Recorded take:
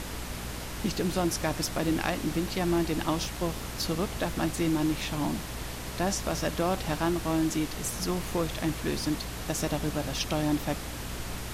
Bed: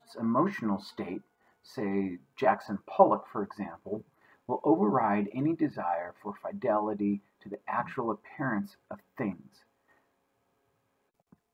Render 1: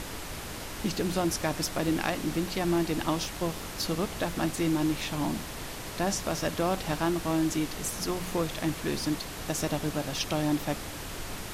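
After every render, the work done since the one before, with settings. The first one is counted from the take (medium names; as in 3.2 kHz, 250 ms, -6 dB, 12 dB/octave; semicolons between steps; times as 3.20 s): de-hum 60 Hz, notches 4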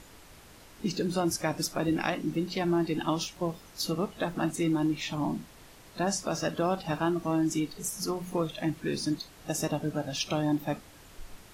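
noise print and reduce 14 dB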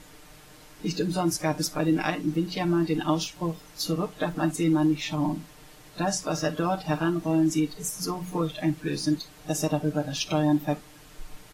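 comb 6.6 ms, depth 84%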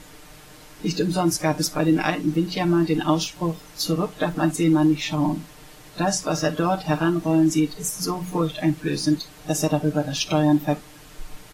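trim +4.5 dB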